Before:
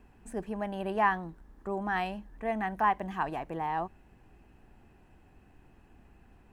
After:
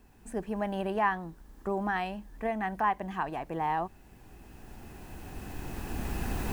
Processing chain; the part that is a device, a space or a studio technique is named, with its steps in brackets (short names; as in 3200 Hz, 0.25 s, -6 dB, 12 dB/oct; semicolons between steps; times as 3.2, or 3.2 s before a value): cheap recorder with automatic gain (white noise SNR 38 dB; recorder AGC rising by 10 dB/s); gain -1.5 dB